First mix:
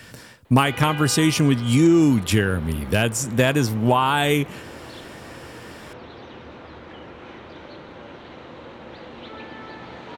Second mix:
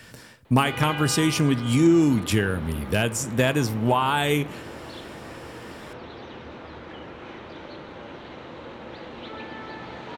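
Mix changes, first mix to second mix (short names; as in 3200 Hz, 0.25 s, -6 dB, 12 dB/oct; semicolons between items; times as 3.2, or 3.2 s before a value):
speech -3.5 dB; reverb: on, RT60 0.65 s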